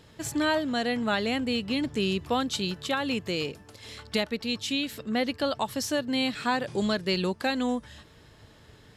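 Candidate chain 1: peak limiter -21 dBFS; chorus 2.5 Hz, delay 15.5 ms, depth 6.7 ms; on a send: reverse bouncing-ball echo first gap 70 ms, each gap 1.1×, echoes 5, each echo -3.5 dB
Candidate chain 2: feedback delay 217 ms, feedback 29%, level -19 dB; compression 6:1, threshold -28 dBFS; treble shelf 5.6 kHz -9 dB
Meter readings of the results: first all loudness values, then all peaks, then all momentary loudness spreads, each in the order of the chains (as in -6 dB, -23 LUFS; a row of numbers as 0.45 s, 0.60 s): -32.0 LUFS, -33.5 LUFS; -17.5 dBFS, -18.5 dBFS; 7 LU, 5 LU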